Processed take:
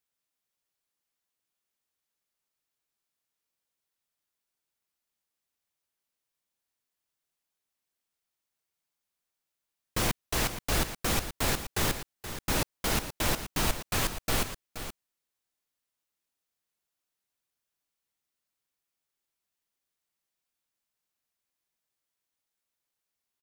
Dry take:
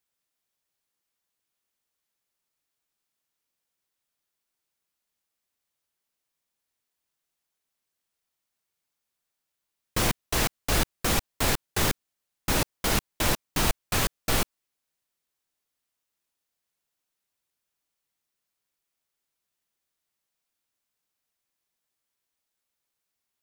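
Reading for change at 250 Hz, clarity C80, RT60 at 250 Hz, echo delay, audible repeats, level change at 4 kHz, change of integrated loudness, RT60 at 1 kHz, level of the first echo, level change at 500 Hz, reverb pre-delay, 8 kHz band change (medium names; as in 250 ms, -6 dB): -3.0 dB, no reverb, no reverb, 475 ms, 1, -3.0 dB, -3.5 dB, no reverb, -11.0 dB, -3.0 dB, no reverb, -3.0 dB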